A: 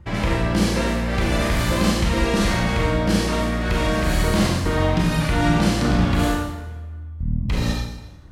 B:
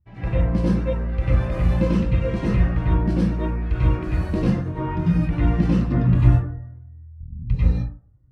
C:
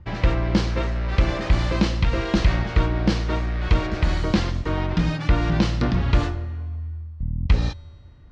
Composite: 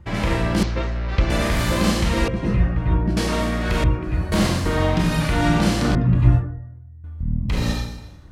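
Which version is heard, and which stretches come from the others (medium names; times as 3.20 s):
A
0.63–1.30 s: from C
2.28–3.17 s: from B
3.84–4.32 s: from B
5.95–7.04 s: from B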